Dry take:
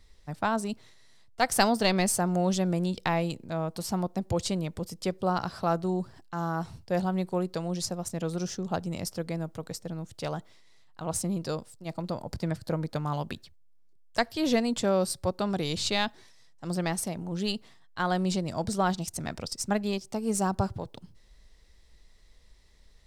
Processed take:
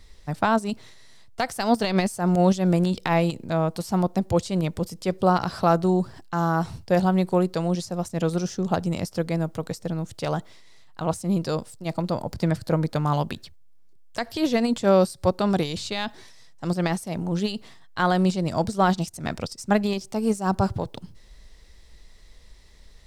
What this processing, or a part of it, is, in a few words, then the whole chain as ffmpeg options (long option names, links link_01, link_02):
de-esser from a sidechain: -filter_complex "[0:a]asplit=2[link_01][link_02];[link_02]highpass=6800,apad=whole_len=1017263[link_03];[link_01][link_03]sidechaincompress=threshold=-48dB:ratio=3:attack=0.89:release=75,volume=8dB"